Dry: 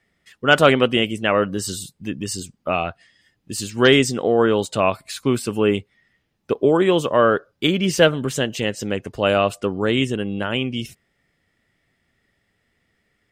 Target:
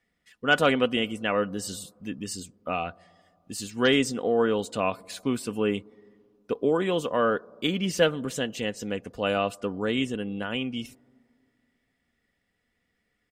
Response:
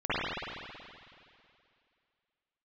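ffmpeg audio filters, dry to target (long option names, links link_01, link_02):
-filter_complex "[0:a]aecho=1:1:4.1:0.37,asplit=2[link_01][link_02];[1:a]atrim=start_sample=2205,lowpass=frequency=1100:width=0.5412,lowpass=frequency=1100:width=1.3066[link_03];[link_02][link_03]afir=irnorm=-1:irlink=0,volume=-37dB[link_04];[link_01][link_04]amix=inputs=2:normalize=0,volume=-8dB"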